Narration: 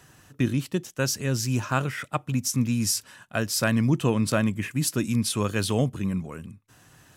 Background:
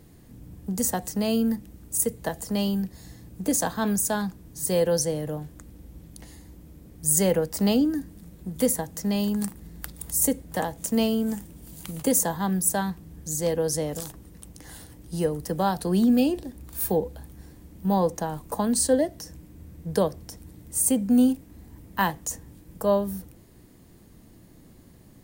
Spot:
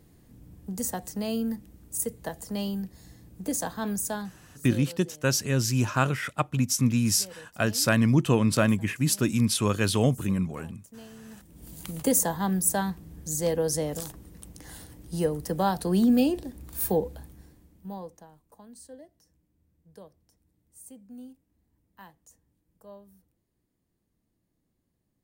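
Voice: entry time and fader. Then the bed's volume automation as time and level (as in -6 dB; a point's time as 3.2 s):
4.25 s, +1.0 dB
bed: 4.12 s -5.5 dB
5.03 s -24 dB
11.19 s -24 dB
11.64 s -1 dB
17.16 s -1 dB
18.45 s -25.5 dB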